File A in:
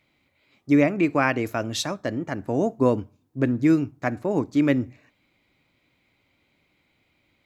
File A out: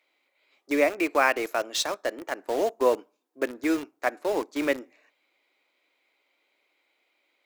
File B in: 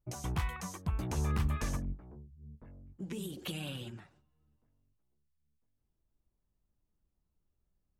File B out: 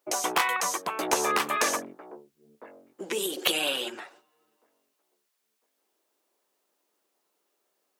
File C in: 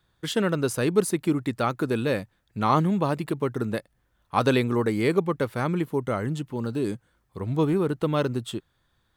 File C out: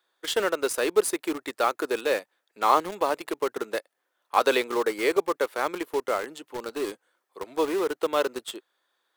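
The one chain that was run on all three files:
HPF 390 Hz 24 dB/oct; in parallel at -6 dB: bit-crush 5-bit; on the sum: match loudness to -27 LUFS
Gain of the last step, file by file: -2.5, +16.5, -1.5 dB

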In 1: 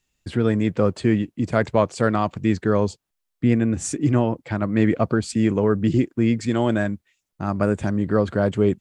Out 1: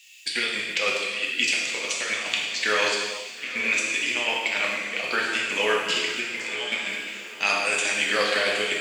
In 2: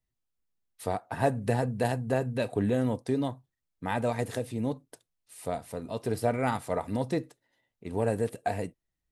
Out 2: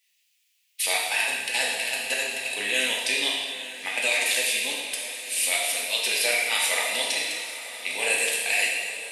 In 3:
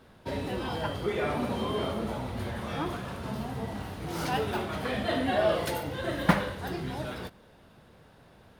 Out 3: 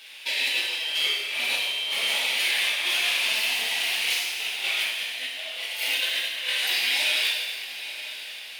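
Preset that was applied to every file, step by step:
HPF 1200 Hz 12 dB/oct; resonant high shelf 1800 Hz +11 dB, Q 3; negative-ratio compressor -33 dBFS, ratio -0.5; diffused feedback echo 0.923 s, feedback 47%, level -13 dB; non-linear reverb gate 0.47 s falling, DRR -3.5 dB; match loudness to -24 LUFS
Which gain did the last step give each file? +2.5, +5.5, +1.5 dB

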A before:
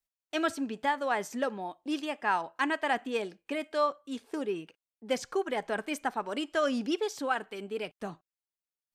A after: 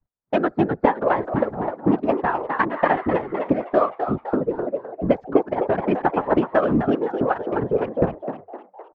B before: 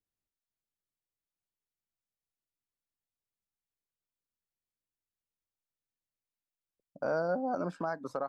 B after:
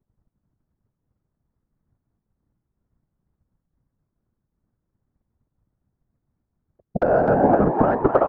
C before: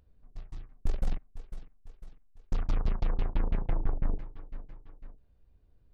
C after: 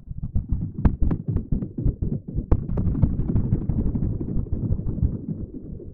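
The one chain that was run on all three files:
Wiener smoothing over 15 samples; LPF 1400 Hz 12 dB/oct; low shelf 140 Hz +10.5 dB; transient shaper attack +9 dB, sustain -7 dB; compressor 5:1, threshold -30 dBFS; whisperiser; frequency-shifting echo 0.256 s, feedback 43%, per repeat +94 Hz, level -7 dB; noise-modulated level, depth 60%; normalise peaks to -3 dBFS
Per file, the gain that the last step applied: +15.5, +19.5, +14.5 dB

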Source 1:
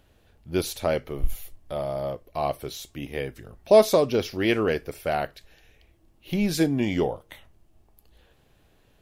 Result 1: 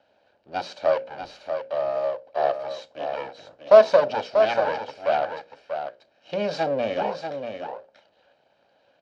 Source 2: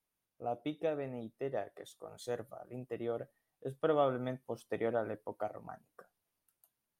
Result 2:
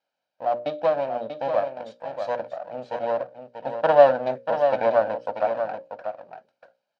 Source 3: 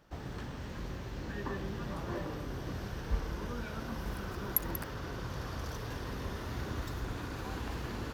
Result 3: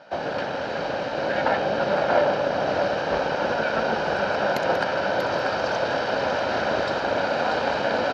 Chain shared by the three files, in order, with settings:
minimum comb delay 1.3 ms; speaker cabinet 350–4300 Hz, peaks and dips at 560 Hz +8 dB, 1100 Hz -5 dB, 2100 Hz -8 dB, 3400 Hz -7 dB; notches 60/120/180/240/300/360/420/480/540/600 Hz; on a send: echo 0.638 s -7.5 dB; on the sum: match loudness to -24 LUFS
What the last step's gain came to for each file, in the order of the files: +3.5, +13.0, +21.0 dB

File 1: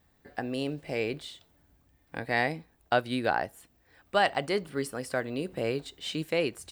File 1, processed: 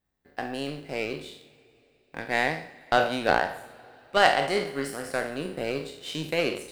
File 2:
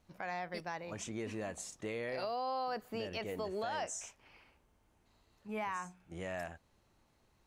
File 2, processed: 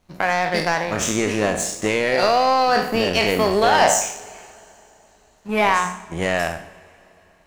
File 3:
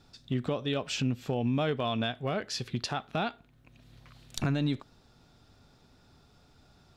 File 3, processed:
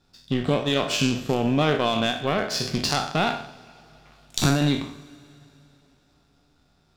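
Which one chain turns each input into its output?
spectral trails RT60 0.75 s; power-law curve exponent 1.4; two-slope reverb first 0.32 s, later 3.4 s, from -18 dB, DRR 11 dB; normalise peaks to -3 dBFS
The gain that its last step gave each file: +5.0, +22.5, +10.5 dB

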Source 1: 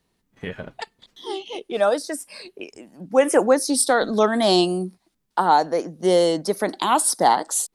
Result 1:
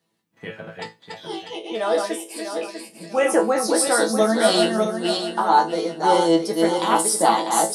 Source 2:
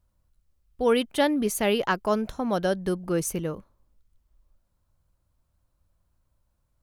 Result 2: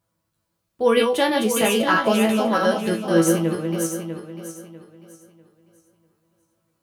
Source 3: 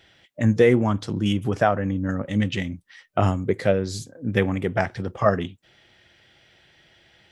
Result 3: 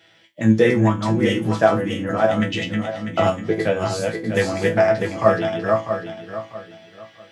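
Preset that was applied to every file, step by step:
regenerating reverse delay 0.323 s, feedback 53%, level -3 dB; HPF 150 Hz 12 dB/oct; resonator bank A2 fifth, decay 0.23 s; match loudness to -20 LUFS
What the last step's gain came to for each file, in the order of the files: +10.0, +16.0, +13.5 dB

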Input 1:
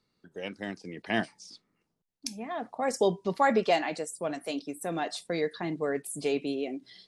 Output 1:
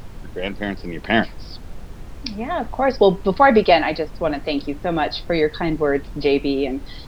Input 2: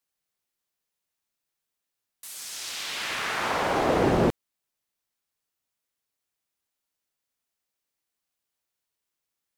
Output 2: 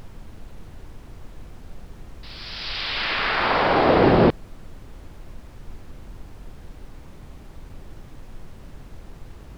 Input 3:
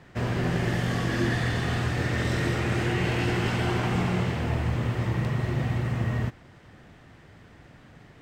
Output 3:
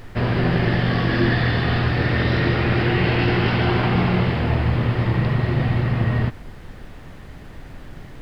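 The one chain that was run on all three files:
downsampling 11025 Hz; added noise brown -44 dBFS; match loudness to -20 LUFS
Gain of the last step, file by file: +11.0, +6.5, +7.0 dB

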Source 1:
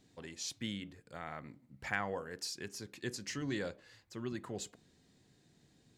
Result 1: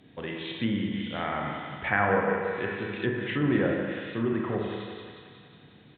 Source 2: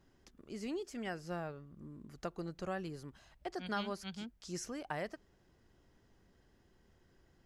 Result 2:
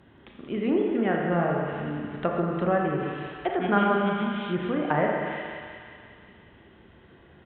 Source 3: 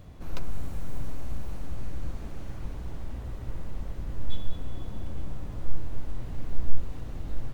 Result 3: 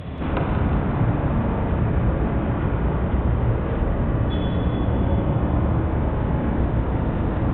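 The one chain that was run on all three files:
HPF 75 Hz 12 dB/oct; Schroeder reverb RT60 1.5 s, combs from 27 ms, DRR 0 dB; downsampling 8000 Hz; on a send: thinning echo 0.181 s, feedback 69%, high-pass 570 Hz, level -8 dB; on the sum: treble ducked by the level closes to 1700 Hz, closed at -36 dBFS; normalise peaks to -9 dBFS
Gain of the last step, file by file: +11.5, +14.0, +18.0 dB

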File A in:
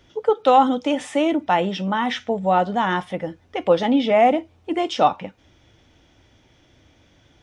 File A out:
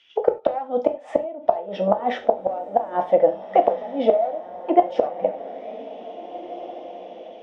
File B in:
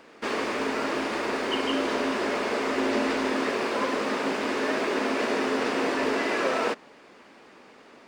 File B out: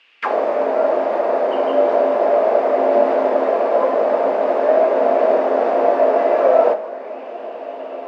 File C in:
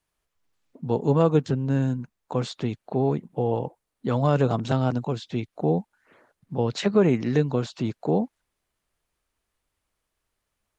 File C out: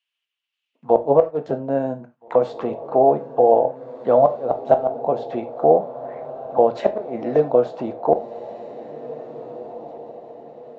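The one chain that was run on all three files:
one-sided fold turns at -10.5 dBFS; gate -45 dBFS, range -9 dB; auto-wah 630–2900 Hz, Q 5.8, down, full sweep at -26 dBFS; flipped gate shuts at -23 dBFS, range -24 dB; diffused feedback echo 1.79 s, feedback 42%, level -14.5 dB; non-linear reverb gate 0.12 s falling, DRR 7 dB; normalise peaks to -1.5 dBFS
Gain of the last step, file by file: +19.5, +20.0, +20.0 dB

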